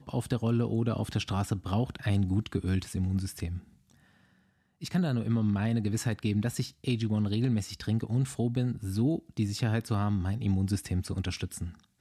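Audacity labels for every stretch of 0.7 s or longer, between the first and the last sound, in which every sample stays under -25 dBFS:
3.450000	4.950000	silence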